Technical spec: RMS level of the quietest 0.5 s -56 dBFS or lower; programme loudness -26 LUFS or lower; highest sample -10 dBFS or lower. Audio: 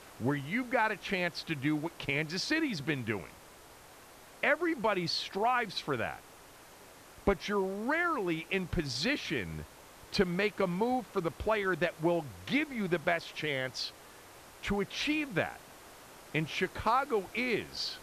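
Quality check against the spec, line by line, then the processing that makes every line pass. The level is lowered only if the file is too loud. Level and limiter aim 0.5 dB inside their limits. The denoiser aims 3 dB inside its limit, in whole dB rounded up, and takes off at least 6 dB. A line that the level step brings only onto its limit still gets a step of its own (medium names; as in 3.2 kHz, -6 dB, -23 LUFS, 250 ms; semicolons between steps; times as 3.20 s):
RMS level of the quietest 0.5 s -54 dBFS: fail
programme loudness -32.5 LUFS: pass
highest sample -14.0 dBFS: pass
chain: noise reduction 6 dB, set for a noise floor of -54 dBFS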